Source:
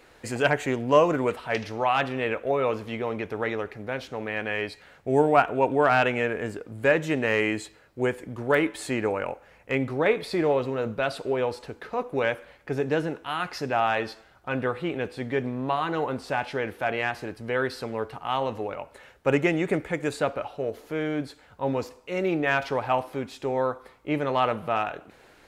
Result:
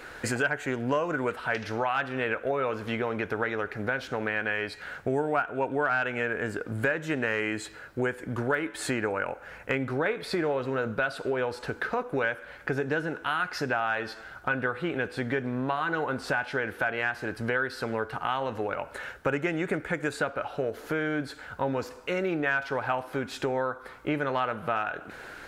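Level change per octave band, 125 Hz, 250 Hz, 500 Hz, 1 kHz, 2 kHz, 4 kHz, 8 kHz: -2.5 dB, -3.0 dB, -4.5 dB, -4.0 dB, +1.0 dB, -3.0 dB, +0.5 dB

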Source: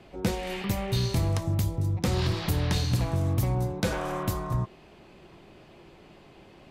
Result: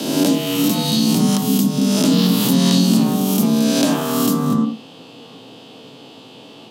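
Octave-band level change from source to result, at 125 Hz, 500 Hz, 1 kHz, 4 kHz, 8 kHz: +3.5 dB, +10.0 dB, +8.5 dB, +14.5 dB, +16.5 dB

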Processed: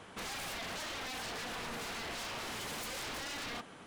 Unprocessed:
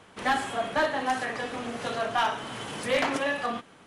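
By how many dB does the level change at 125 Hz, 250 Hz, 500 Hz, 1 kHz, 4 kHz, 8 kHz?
-7.5 dB, -13.0 dB, -16.5 dB, -15.0 dB, -5.0 dB, -0.5 dB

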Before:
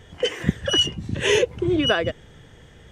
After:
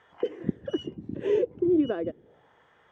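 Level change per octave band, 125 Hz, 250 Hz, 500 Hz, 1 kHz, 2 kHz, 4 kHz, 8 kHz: -12.5 dB, -1.5 dB, -4.0 dB, -13.5 dB, -21.0 dB, -25.5 dB, under -30 dB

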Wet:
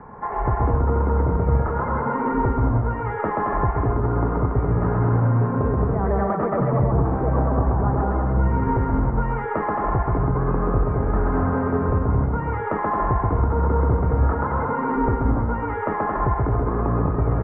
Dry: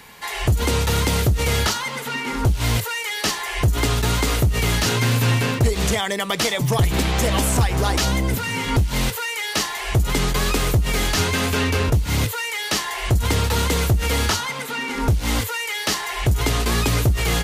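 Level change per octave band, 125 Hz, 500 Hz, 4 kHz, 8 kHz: 0.0 dB, +2.0 dB, under -40 dB, under -40 dB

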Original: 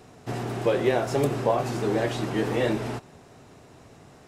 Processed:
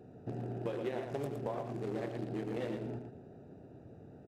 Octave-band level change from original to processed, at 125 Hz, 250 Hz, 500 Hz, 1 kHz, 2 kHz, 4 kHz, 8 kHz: -11.0 dB, -11.5 dB, -13.5 dB, -15.5 dB, -17.5 dB, -18.5 dB, under -20 dB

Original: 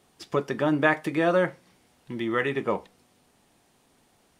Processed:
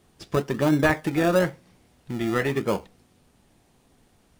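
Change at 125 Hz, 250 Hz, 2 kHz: +6.5 dB, +3.5 dB, -0.5 dB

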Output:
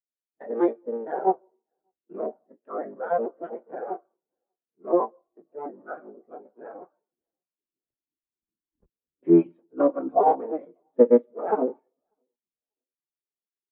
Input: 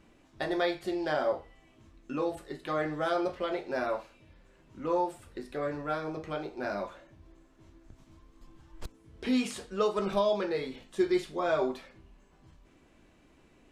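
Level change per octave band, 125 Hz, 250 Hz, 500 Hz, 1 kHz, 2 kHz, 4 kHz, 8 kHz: +1.0 dB, +6.5 dB, +6.0 dB, +6.5 dB, -8.5 dB, under -30 dB, under -30 dB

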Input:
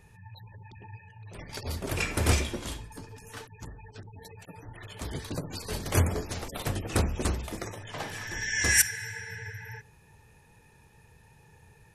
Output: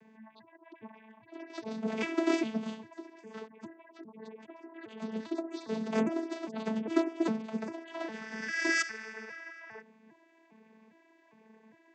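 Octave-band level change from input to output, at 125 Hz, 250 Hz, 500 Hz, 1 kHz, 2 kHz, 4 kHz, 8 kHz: -18.5 dB, +5.0 dB, +1.0 dB, -2.5 dB, -4.0 dB, -8.5 dB, -17.5 dB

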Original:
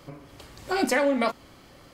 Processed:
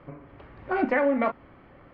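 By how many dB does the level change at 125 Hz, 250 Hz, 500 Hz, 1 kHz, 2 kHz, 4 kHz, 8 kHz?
0.0 dB, 0.0 dB, 0.0 dB, 0.0 dB, -1.0 dB, under -15 dB, under -40 dB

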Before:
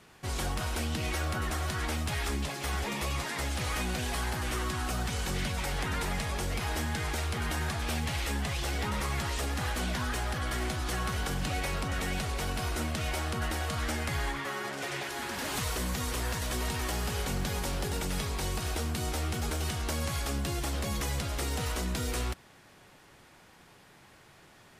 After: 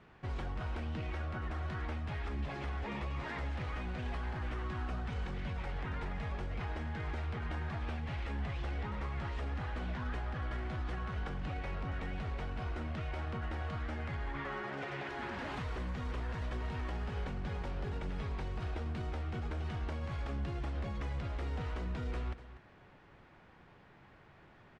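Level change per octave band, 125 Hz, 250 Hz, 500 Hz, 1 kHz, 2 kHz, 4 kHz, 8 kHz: -4.5 dB, -6.5 dB, -7.0 dB, -7.5 dB, -9.0 dB, -16.0 dB, -28.5 dB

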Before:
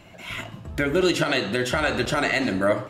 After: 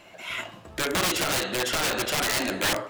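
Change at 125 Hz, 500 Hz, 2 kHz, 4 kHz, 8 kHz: -7.0 dB, -6.5 dB, -2.5 dB, +2.5 dB, +8.5 dB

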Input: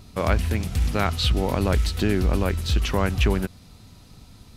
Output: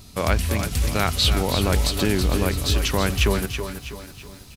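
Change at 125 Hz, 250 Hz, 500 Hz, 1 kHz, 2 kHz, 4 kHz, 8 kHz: 0.0 dB, +0.5 dB, +1.5 dB, +1.5 dB, +3.0 dB, +6.0 dB, +9.0 dB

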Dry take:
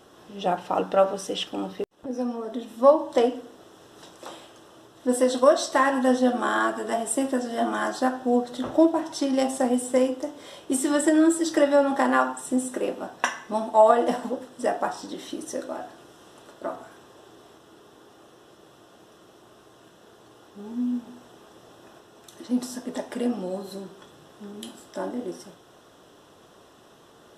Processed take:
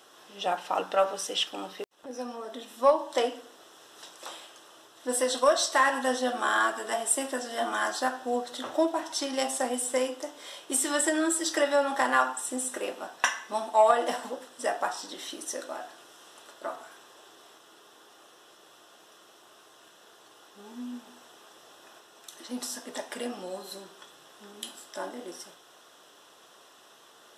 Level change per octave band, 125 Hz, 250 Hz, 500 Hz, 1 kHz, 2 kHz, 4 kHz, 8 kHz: no reading, -11.0 dB, -5.5 dB, -2.5 dB, +1.0 dB, +2.5 dB, +3.0 dB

